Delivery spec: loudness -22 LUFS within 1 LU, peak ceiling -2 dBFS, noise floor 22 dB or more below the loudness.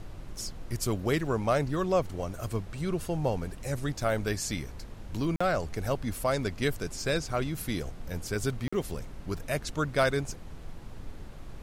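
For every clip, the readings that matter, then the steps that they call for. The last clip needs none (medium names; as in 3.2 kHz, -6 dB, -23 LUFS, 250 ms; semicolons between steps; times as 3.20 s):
dropouts 2; longest dropout 45 ms; noise floor -44 dBFS; noise floor target -54 dBFS; loudness -31.5 LUFS; peak level -13.0 dBFS; loudness target -22.0 LUFS
-> interpolate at 5.36/8.68 s, 45 ms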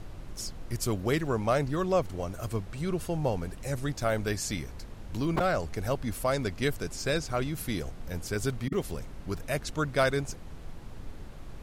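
dropouts 0; noise floor -43 dBFS; noise floor target -54 dBFS
-> noise print and reduce 11 dB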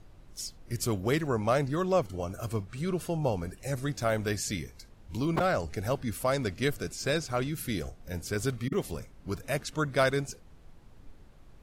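noise floor -54 dBFS; loudness -31.5 LUFS; peak level -13.5 dBFS; loudness target -22.0 LUFS
-> trim +9.5 dB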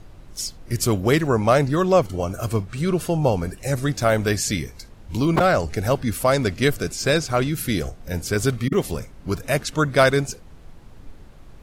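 loudness -22.0 LUFS; peak level -4.0 dBFS; noise floor -44 dBFS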